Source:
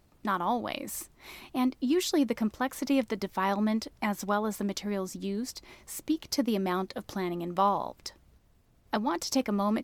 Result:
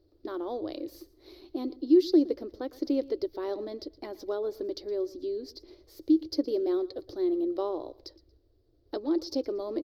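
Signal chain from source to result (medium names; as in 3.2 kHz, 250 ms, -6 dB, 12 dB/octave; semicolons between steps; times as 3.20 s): FFT filter 110 Hz 0 dB, 190 Hz -27 dB, 320 Hz +12 dB, 550 Hz +3 dB, 890 Hz -13 dB, 1.5 kHz -12 dB, 2.6 kHz -16 dB, 4.6 kHz +3 dB, 8 kHz -27 dB, 14 kHz -10 dB; on a send: feedback delay 116 ms, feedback 28%, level -20 dB; on the sum: trim -3 dB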